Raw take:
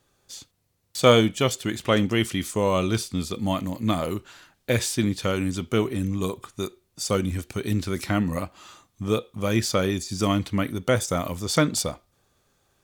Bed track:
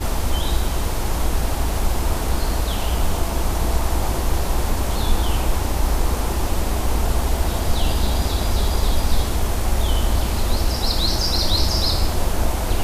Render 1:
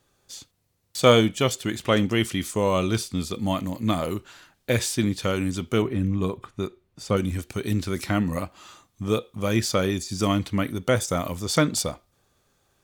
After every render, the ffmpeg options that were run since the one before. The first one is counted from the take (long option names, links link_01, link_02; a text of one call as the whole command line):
ffmpeg -i in.wav -filter_complex "[0:a]asettb=1/sr,asplit=3[link_01][link_02][link_03];[link_01]atrim=end=5.824[link_04];[link_02]atrim=start=5.82:end=7.17,asetpts=PTS-STARTPTS,afade=type=in:duration=0.004:curve=qsin,afade=type=out:start_time=1.346:duration=0.004:curve=qsin,bass=frequency=250:gain=3,treble=frequency=4000:gain=-13[link_05];[link_03]atrim=start=7.166[link_06];[link_04][link_05]acrossfade=duration=0.004:curve1=hsin:curve2=qsin[link_07];[link_07][link_06]acrossfade=duration=0.004:curve1=qsin:curve2=hsin" out.wav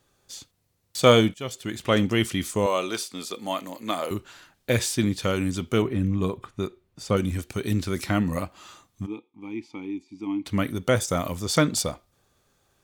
ffmpeg -i in.wav -filter_complex "[0:a]asettb=1/sr,asplit=3[link_01][link_02][link_03];[link_01]atrim=end=2.664[link_04];[link_02]atrim=start=2.66:end=4.11,asetpts=PTS-STARTPTS,afade=type=in:duration=0.004:curve=qsin,afade=type=out:start_time=1.446:duration=0.004:curve=qsin,highpass=400[link_05];[link_03]atrim=start=4.106[link_06];[link_04][link_05]acrossfade=duration=0.004:curve1=hsin:curve2=qsin[link_07];[link_07][link_06]acrossfade=duration=0.004:curve1=qsin:curve2=hsin,asplit=3[link_08][link_09][link_10];[link_08]afade=type=out:start_time=9.05:duration=0.02[link_11];[link_09]asplit=3[link_12][link_13][link_14];[link_12]bandpass=frequency=300:width_type=q:width=8,volume=0dB[link_15];[link_13]bandpass=frequency=870:width_type=q:width=8,volume=-6dB[link_16];[link_14]bandpass=frequency=2240:width_type=q:width=8,volume=-9dB[link_17];[link_15][link_16][link_17]amix=inputs=3:normalize=0,afade=type=in:start_time=9.05:duration=0.02,afade=type=out:start_time=10.45:duration=0.02[link_18];[link_10]afade=type=in:start_time=10.45:duration=0.02[link_19];[link_11][link_18][link_19]amix=inputs=3:normalize=0,asplit=2[link_20][link_21];[link_20]atrim=end=1.34,asetpts=PTS-STARTPTS,afade=type=out:start_time=1.336:duration=0.004:curve=hsin:silence=0.149624[link_22];[link_21]atrim=start=1.34,asetpts=PTS-STARTPTS,afade=type=in:duration=0.63:silence=0.149624[link_23];[link_22][link_23]concat=n=2:v=0:a=1" out.wav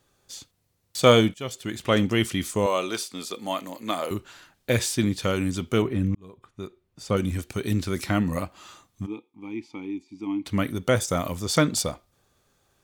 ffmpeg -i in.wav -filter_complex "[0:a]asplit=2[link_01][link_02];[link_01]atrim=end=6.15,asetpts=PTS-STARTPTS,afade=type=out:start_time=6.146:duration=0.004:curve=hsin[link_03];[link_02]atrim=start=6.15,asetpts=PTS-STARTPTS,afade=type=in:duration=1.12[link_04];[link_03][link_04]concat=n=2:v=0:a=1" out.wav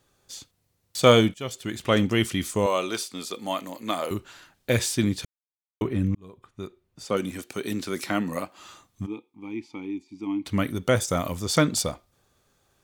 ffmpeg -i in.wav -filter_complex "[0:a]asettb=1/sr,asplit=3[link_01][link_02][link_03];[link_01]atrim=end=7.054[link_04];[link_02]atrim=start=7.05:end=8.59,asetpts=PTS-STARTPTS,afade=type=in:duration=0.004:curve=qsin,afade=type=out:start_time=1.536:duration=0.004:curve=qsin,highpass=230[link_05];[link_03]atrim=start=8.586[link_06];[link_04][link_05]acrossfade=duration=0.004:curve1=hsin:curve2=qsin[link_07];[link_07][link_06]acrossfade=duration=0.004:curve1=qsin:curve2=hsin,asplit=3[link_08][link_09][link_10];[link_08]atrim=end=5.25,asetpts=PTS-STARTPTS,afade=type=out:start_time=5.246:duration=0.004:curve=hsin[link_11];[link_09]atrim=start=5.25:end=5.81,asetpts=PTS-STARTPTS,volume=0[link_12];[link_10]atrim=start=5.81,asetpts=PTS-STARTPTS,afade=type=in:duration=0.004:curve=hsin[link_13];[link_11][link_12][link_13]concat=n=3:v=0:a=1" out.wav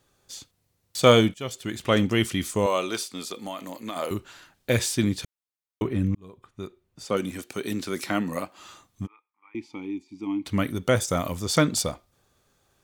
ffmpeg -i in.wav -filter_complex "[0:a]asettb=1/sr,asplit=3[link_01][link_02][link_03];[link_01]atrim=end=3.324[link_04];[link_02]atrim=start=3.32:end=3.96,asetpts=PTS-STARTPTS,afade=type=in:duration=0.004:curve=qsin,afade=type=out:start_time=0.636:duration=0.004:curve=qsin,acompressor=threshold=-29dB:ratio=6:attack=3.2:release=140:knee=1:detection=peak[link_05];[link_03]atrim=start=3.956[link_06];[link_04][link_05]acrossfade=duration=0.004:curve1=hsin:curve2=qsin[link_07];[link_07][link_06]acrossfade=duration=0.004:curve1=qsin:curve2=hsin,asettb=1/sr,asplit=3[link_08][link_09][link_10];[link_08]atrim=end=9.074[link_11];[link_09]atrim=start=9.07:end=9.55,asetpts=PTS-STARTPTS,afade=type=in:duration=0.004:curve=qsin,afade=type=out:start_time=0.476:duration=0.004:curve=qsin,asuperpass=centerf=1500:order=4:qfactor=1.8[link_12];[link_10]atrim=start=9.546[link_13];[link_11][link_12]acrossfade=duration=0.004:curve1=hsin:curve2=qsin[link_14];[link_14][link_13]acrossfade=duration=0.004:curve1=qsin:curve2=hsin" out.wav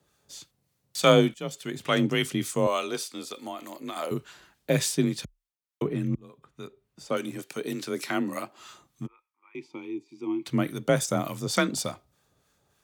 ffmpeg -i in.wav -filter_complex "[0:a]acrossover=split=890[link_01][link_02];[link_01]aeval=exprs='val(0)*(1-0.5/2+0.5/2*cos(2*PI*3.4*n/s))':channel_layout=same[link_03];[link_02]aeval=exprs='val(0)*(1-0.5/2-0.5/2*cos(2*PI*3.4*n/s))':channel_layout=same[link_04];[link_03][link_04]amix=inputs=2:normalize=0,afreqshift=32" out.wav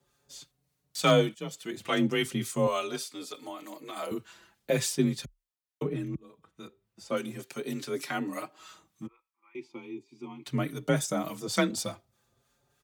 ffmpeg -i in.wav -filter_complex "[0:a]asoftclip=type=hard:threshold=-7.5dB,asplit=2[link_01][link_02];[link_02]adelay=5.3,afreqshift=0.4[link_03];[link_01][link_03]amix=inputs=2:normalize=1" out.wav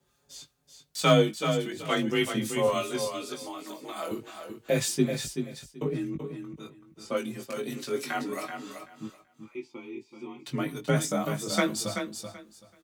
ffmpeg -i in.wav -filter_complex "[0:a]asplit=2[link_01][link_02];[link_02]adelay=19,volume=-5dB[link_03];[link_01][link_03]amix=inputs=2:normalize=0,aecho=1:1:382|764|1146:0.422|0.0801|0.0152" out.wav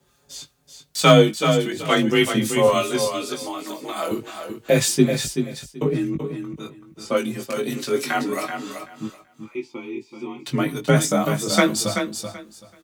ffmpeg -i in.wav -af "volume=8.5dB,alimiter=limit=-1dB:level=0:latency=1" out.wav